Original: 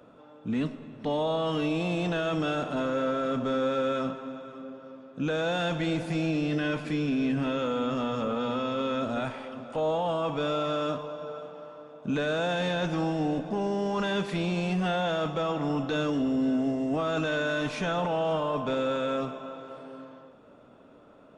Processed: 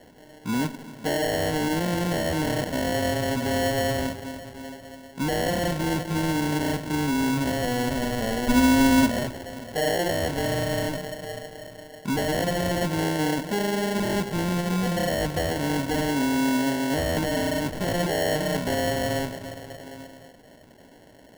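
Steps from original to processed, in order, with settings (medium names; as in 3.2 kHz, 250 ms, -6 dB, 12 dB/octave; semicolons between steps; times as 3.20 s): 8.47–9.09 s: small resonant body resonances 260/1200 Hz, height 15 dB -> 13 dB, ringing for 100 ms; sample-and-hold 36×; trim +3 dB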